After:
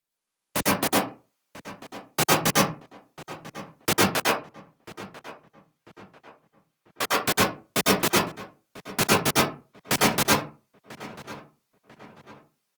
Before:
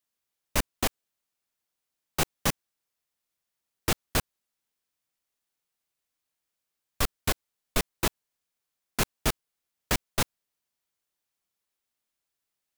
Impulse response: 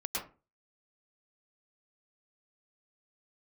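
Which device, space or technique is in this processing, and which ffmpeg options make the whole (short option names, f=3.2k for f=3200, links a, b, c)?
far-field microphone of a smart speaker: -filter_complex "[0:a]asettb=1/sr,asplit=3[a][b][c];[a]atrim=end=4.034[d];[b]atrim=start=4.03:end=7.14,asetpts=PTS-STARTPTS,afade=t=in:d=0.004:c=qsin,afade=t=out:st=3.106:d=0.004:c=qsin,bass=f=250:g=-13,treble=f=4k:g=-5[e];[c]atrim=start=7.136[f];[d][e]acrossfade=d=0.004:c1=hsin:c2=qsin[g];[g][f]acrossfade=d=0.004:c1=qsin:c2=hsin,asplit=2[h][i];[i]adelay=993,lowpass=f=2.7k:p=1,volume=-17dB,asplit=2[j][k];[k]adelay=993,lowpass=f=2.7k:p=1,volume=0.42,asplit=2[l][m];[m]adelay=993,lowpass=f=2.7k:p=1,volume=0.42,asplit=2[n][o];[o]adelay=993,lowpass=f=2.7k:p=1,volume=0.42[p];[h][j][l][n][p]amix=inputs=5:normalize=0[q];[1:a]atrim=start_sample=2205[r];[q][r]afir=irnorm=-1:irlink=0,highpass=f=120:w=0.5412,highpass=f=120:w=1.3066,dynaudnorm=f=180:g=5:m=6dB" -ar 48000 -c:a libopus -b:a 32k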